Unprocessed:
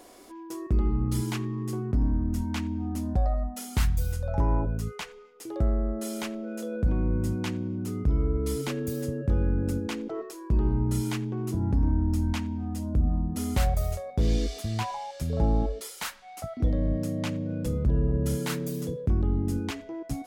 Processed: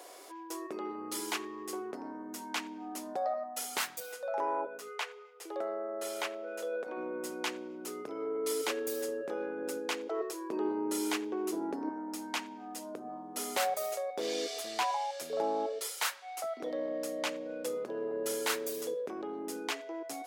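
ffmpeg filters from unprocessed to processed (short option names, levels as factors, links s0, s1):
-filter_complex "[0:a]asettb=1/sr,asplit=3[s0][s1][s2];[s0]atrim=end=4.004[s3];[s1]atrim=start=4:end=6.97,asetpts=PTS-STARTPTS,afade=t=in:d=0.004:c=qsin,afade=t=out:st=2.966:d=0.004:c=qsin,bass=f=250:g=-13,treble=f=4000:g=-6[s4];[s2]atrim=start=6.966[s5];[s3][s4]acrossfade=d=0.004:c1=hsin:c2=qsin[s6];[s6][s5]acrossfade=d=0.004:c1=qsin:c2=hsin,asettb=1/sr,asplit=3[s7][s8][s9];[s7]atrim=end=10.204[s10];[s8]atrim=start=10.2:end=11.89,asetpts=PTS-STARTPTS,afade=t=in:d=0.004:c=qsin,afade=t=out:st=1.686:d=0.004:c=qsin,equalizer=f=310:w=1.5:g=7[s11];[s9]atrim=start=11.886[s12];[s10][s11]acrossfade=d=0.004:c1=hsin:c2=qsin[s13];[s13][s12]acrossfade=d=0.004:c1=qsin:c2=hsin,highpass=f=410:w=0.5412,highpass=f=410:w=1.3066,volume=1.26"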